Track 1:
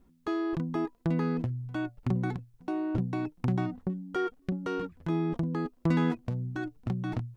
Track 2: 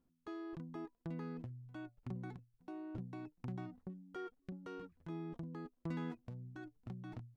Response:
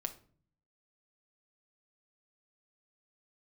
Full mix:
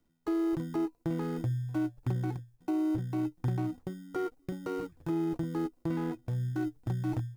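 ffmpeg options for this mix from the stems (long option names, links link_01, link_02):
-filter_complex "[0:a]agate=range=-10dB:threshold=-52dB:ratio=16:detection=peak,equalizer=frequency=125:width_type=o:width=0.33:gain=8,equalizer=frequency=200:width_type=o:width=0.33:gain=-11,equalizer=frequency=315:width_type=o:width=0.33:gain=11,equalizer=frequency=500:width_type=o:width=0.33:gain=3,equalizer=frequency=800:width_type=o:width=0.33:gain=5,equalizer=frequency=2000:width_type=o:width=0.33:gain=-5,equalizer=frequency=3150:width_type=o:width=0.33:gain=-12,volume=-6.5dB[link_01];[1:a]equalizer=frequency=460:width_type=o:width=1.4:gain=-6,acrusher=samples=26:mix=1:aa=0.000001,volume=2.5dB[link_02];[link_01][link_02]amix=inputs=2:normalize=0,acrossover=split=3200[link_03][link_04];[link_04]acompressor=threshold=-57dB:ratio=4:attack=1:release=60[link_05];[link_03][link_05]amix=inputs=2:normalize=0,highshelf=frequency=3600:gain=7,alimiter=limit=-23dB:level=0:latency=1:release=417"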